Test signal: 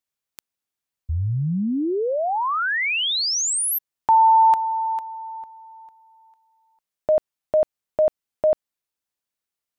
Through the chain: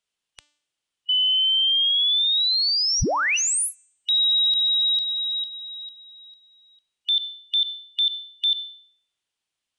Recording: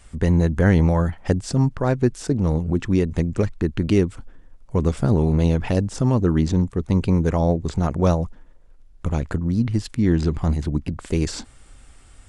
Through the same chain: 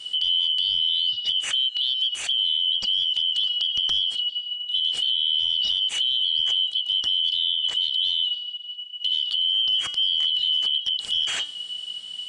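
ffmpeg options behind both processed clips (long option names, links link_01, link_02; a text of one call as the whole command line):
ffmpeg -i in.wav -filter_complex "[0:a]afftfilt=real='real(if(lt(b,272),68*(eq(floor(b/68),0)*2+eq(floor(b/68),1)*3+eq(floor(b/68),2)*0+eq(floor(b/68),3)*1)+mod(b,68),b),0)':imag='imag(if(lt(b,272),68*(eq(floor(b/68),0)*2+eq(floor(b/68),1)*3+eq(floor(b/68),2)*0+eq(floor(b/68),3)*1)+mod(b,68),b),0)':win_size=2048:overlap=0.75,equalizer=frequency=3100:width=1.9:gain=8.5,bandreject=frequency=294.8:width_type=h:width=4,bandreject=frequency=589.6:width_type=h:width=4,bandreject=frequency=884.4:width_type=h:width=4,bandreject=frequency=1179.2:width_type=h:width=4,bandreject=frequency=1474:width_type=h:width=4,bandreject=frequency=1768.8:width_type=h:width=4,bandreject=frequency=2063.6:width_type=h:width=4,bandreject=frequency=2358.4:width_type=h:width=4,bandreject=frequency=2653.2:width_type=h:width=4,bandreject=frequency=2948:width_type=h:width=4,bandreject=frequency=3242.8:width_type=h:width=4,bandreject=frequency=3537.6:width_type=h:width=4,bandreject=frequency=3832.4:width_type=h:width=4,bandreject=frequency=4127.2:width_type=h:width=4,bandreject=frequency=4422:width_type=h:width=4,bandreject=frequency=4716.8:width_type=h:width=4,bandreject=frequency=5011.6:width_type=h:width=4,bandreject=frequency=5306.4:width_type=h:width=4,bandreject=frequency=5601.2:width_type=h:width=4,bandreject=frequency=5896:width_type=h:width=4,bandreject=frequency=6190.8:width_type=h:width=4,bandreject=frequency=6485.6:width_type=h:width=4,bandreject=frequency=6780.4:width_type=h:width=4,bandreject=frequency=7075.2:width_type=h:width=4,bandreject=frequency=7370:width_type=h:width=4,bandreject=frequency=7664.8:width_type=h:width=4,bandreject=frequency=7959.6:width_type=h:width=4,bandreject=frequency=8254.4:width_type=h:width=4,bandreject=frequency=8549.2:width_type=h:width=4,acrossover=split=130[link_01][link_02];[link_02]acompressor=threshold=-21dB:ratio=10:attack=0.1:release=49:knee=6:detection=rms[link_03];[link_01][link_03]amix=inputs=2:normalize=0,aresample=22050,aresample=44100,volume=3dB" out.wav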